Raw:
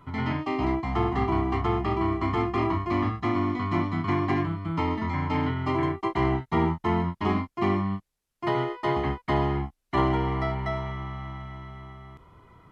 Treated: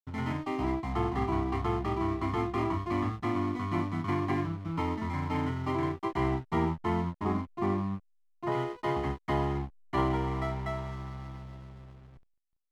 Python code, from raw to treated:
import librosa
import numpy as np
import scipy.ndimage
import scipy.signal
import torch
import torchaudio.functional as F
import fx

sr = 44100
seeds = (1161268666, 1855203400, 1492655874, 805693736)

y = fx.lowpass(x, sr, hz=1700.0, slope=12, at=(7.17, 8.52))
y = fx.backlash(y, sr, play_db=-37.5)
y = F.gain(torch.from_numpy(y), -4.5).numpy()